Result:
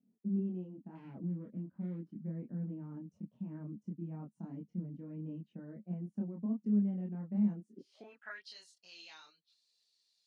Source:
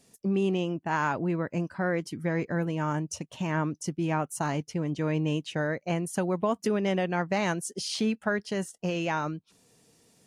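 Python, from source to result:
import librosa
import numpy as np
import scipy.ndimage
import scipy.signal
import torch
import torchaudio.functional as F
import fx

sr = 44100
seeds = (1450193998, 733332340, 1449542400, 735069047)

y = fx.self_delay(x, sr, depth_ms=0.24, at=(0.95, 2.15))
y = fx.filter_sweep_bandpass(y, sr, from_hz=210.0, to_hz=4200.0, start_s=7.72, end_s=8.47, q=7.8)
y = fx.chorus_voices(y, sr, voices=4, hz=0.32, base_ms=26, depth_ms=4.1, mix_pct=50)
y = F.gain(torch.from_numpy(y), 3.5).numpy()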